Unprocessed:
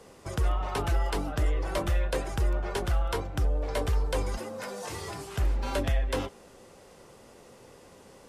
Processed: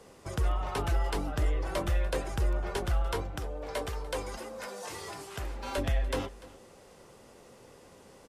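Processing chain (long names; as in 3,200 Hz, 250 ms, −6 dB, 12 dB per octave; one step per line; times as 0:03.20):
0:03.36–0:05.78: low-shelf EQ 200 Hz −10.5 dB
single-tap delay 294 ms −19.5 dB
level −2 dB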